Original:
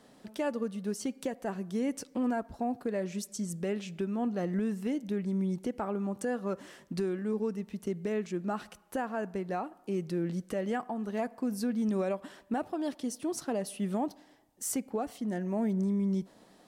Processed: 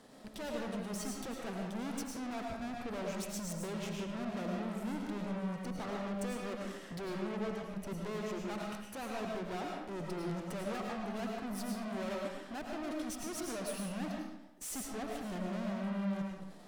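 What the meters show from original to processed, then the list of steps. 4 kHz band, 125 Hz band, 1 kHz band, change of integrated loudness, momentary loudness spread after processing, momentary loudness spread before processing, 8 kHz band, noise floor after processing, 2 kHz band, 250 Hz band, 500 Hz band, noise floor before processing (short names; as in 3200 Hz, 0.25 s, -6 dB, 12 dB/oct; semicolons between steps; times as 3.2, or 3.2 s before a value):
+1.5 dB, -5.0 dB, -4.0 dB, -6.0 dB, 4 LU, 6 LU, -3.0 dB, -50 dBFS, -1.0 dB, -6.5 dB, -6.5 dB, -60 dBFS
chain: tube stage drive 45 dB, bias 0.8; transient shaper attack -3 dB, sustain -8 dB; digital reverb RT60 0.89 s, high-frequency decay 0.75×, pre-delay 65 ms, DRR -0.5 dB; gain +5.5 dB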